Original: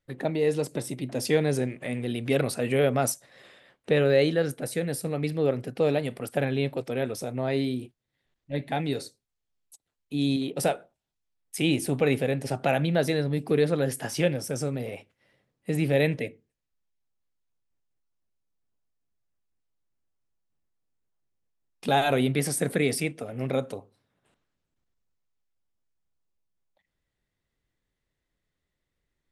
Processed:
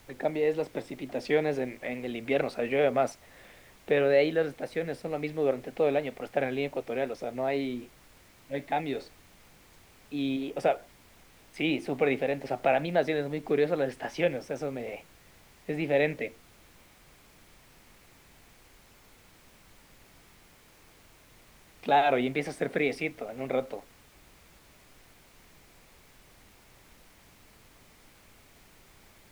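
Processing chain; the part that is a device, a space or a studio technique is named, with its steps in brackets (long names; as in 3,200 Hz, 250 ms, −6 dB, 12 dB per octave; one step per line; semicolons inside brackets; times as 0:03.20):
horn gramophone (band-pass filter 230–3,400 Hz; parametric band 730 Hz +5 dB; tape wow and flutter; pink noise bed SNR 25 dB)
0:10.29–0:10.71: notch filter 4,100 Hz, Q 6.8
parametric band 2,200 Hz +4.5 dB 0.44 octaves
level −3 dB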